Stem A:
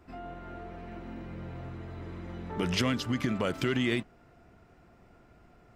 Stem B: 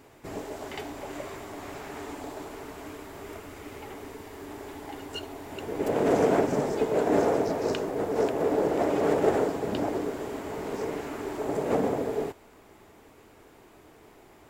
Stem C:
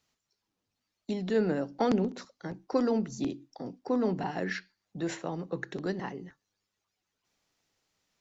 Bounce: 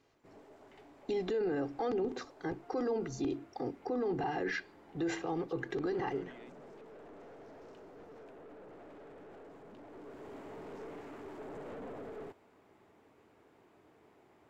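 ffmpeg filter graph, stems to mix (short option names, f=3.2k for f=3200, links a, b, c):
-filter_complex "[0:a]highpass=300,alimiter=level_in=4.5dB:limit=-24dB:level=0:latency=1:release=251,volume=-4.5dB,adelay=2500,volume=-16dB[a];[1:a]highpass=95,alimiter=limit=-21.5dB:level=0:latency=1:release=23,aeval=exprs='(tanh(44.7*val(0)+0.25)-tanh(0.25))/44.7':c=same,volume=-9dB,afade=t=in:st=9.87:d=0.5:silence=0.398107[b];[2:a]aecho=1:1:2.5:0.81,volume=2dB[c];[a][b][c]amix=inputs=3:normalize=0,lowpass=f=2.6k:p=1,alimiter=level_in=3dB:limit=-24dB:level=0:latency=1:release=25,volume=-3dB"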